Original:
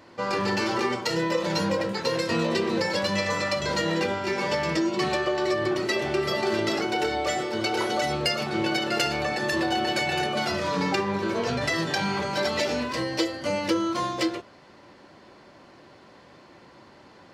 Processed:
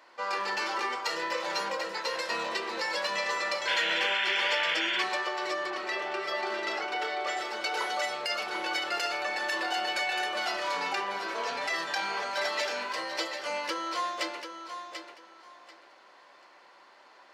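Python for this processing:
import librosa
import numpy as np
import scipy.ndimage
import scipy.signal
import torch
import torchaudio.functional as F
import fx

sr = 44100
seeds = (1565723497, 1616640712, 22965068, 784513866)

y = scipy.signal.sosfilt(scipy.signal.butter(2, 840.0, 'highpass', fs=sr, output='sos'), x)
y = fx.high_shelf(y, sr, hz=2500.0, db=-5.5)
y = fx.echo_feedback(y, sr, ms=739, feedback_pct=21, wet_db=-8.5)
y = fx.over_compress(y, sr, threshold_db=-29.0, ratio=-1.0)
y = fx.spec_paint(y, sr, seeds[0], shape='noise', start_s=3.67, length_s=1.36, low_hz=1400.0, high_hz=3600.0, level_db=-30.0)
y = fx.high_shelf(y, sr, hz=6800.0, db=-11.5, at=(5.7, 7.37))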